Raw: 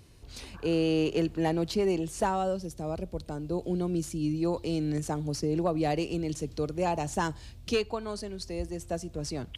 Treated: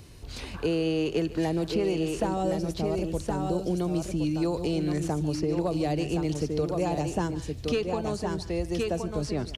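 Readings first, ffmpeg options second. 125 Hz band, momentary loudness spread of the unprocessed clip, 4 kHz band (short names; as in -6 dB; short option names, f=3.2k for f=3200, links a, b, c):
+3.0 dB, 9 LU, +1.0 dB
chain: -filter_complex "[0:a]asplit=2[a][b];[b]aecho=0:1:1067:0.447[c];[a][c]amix=inputs=2:normalize=0,acrossover=split=570|3500[d][e][f];[d]acompressor=threshold=-33dB:ratio=4[g];[e]acompressor=threshold=-43dB:ratio=4[h];[f]acompressor=threshold=-53dB:ratio=4[i];[g][h][i]amix=inputs=3:normalize=0,asplit=2[j][k];[k]aecho=0:1:148:0.141[l];[j][l]amix=inputs=2:normalize=0,volume=7dB"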